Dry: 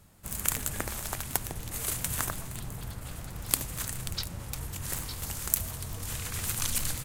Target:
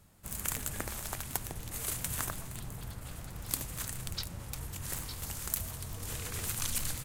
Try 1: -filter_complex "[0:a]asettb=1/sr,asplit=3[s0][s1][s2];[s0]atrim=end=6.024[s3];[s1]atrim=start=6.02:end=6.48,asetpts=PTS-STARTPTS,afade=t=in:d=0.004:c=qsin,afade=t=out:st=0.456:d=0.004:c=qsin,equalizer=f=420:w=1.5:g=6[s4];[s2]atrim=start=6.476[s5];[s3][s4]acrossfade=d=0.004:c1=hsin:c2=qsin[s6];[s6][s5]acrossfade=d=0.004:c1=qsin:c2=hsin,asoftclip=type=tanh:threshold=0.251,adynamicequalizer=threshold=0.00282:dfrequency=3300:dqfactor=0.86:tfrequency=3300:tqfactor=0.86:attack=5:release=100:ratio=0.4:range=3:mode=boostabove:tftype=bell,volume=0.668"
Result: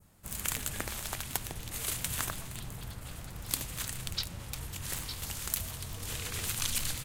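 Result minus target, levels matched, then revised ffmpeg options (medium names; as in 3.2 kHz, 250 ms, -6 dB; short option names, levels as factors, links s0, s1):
4 kHz band +3.5 dB
-filter_complex "[0:a]asettb=1/sr,asplit=3[s0][s1][s2];[s0]atrim=end=6.024[s3];[s1]atrim=start=6.02:end=6.48,asetpts=PTS-STARTPTS,afade=t=in:d=0.004:c=qsin,afade=t=out:st=0.456:d=0.004:c=qsin,equalizer=f=420:w=1.5:g=6[s4];[s2]atrim=start=6.476[s5];[s3][s4]acrossfade=d=0.004:c1=hsin:c2=qsin[s6];[s6][s5]acrossfade=d=0.004:c1=qsin:c2=hsin,asoftclip=type=tanh:threshold=0.251,volume=0.668"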